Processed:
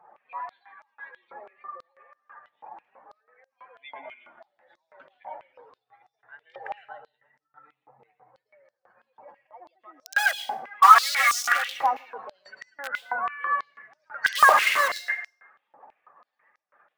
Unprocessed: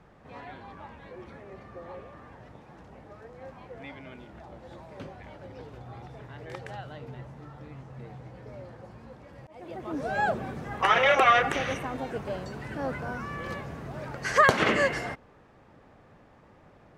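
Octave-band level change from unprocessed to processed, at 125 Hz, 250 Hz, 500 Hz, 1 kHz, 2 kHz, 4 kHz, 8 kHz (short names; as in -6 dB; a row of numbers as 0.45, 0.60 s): under -25 dB, under -20 dB, -7.5 dB, +6.0 dB, +4.0 dB, +4.0 dB, +10.5 dB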